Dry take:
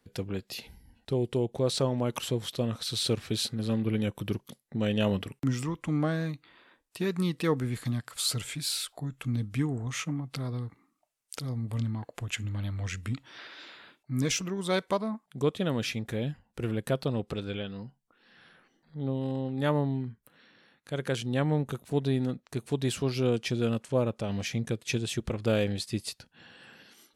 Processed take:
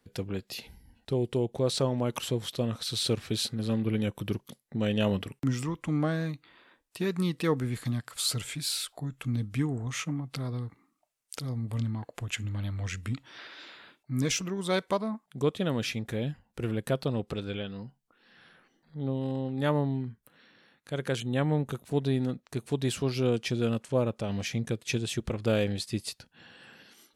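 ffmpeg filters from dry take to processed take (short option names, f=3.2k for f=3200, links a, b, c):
-filter_complex "[0:a]asettb=1/sr,asplit=3[a][b][c];[a]atrim=end=21.204[d];[b]atrim=start=21.2:end=21.63,asetpts=PTS-STARTPTS,afade=t=in:d=0.004:c=qsin,afade=t=out:st=0.426:d=0.004:c=qsin,asuperstop=centerf=5100:order=20:qfactor=2.4[e];[c]atrim=start=21.626[f];[d][e]acrossfade=d=0.004:c1=hsin:c2=qsin[g];[g][f]acrossfade=d=0.004:c1=qsin:c2=hsin"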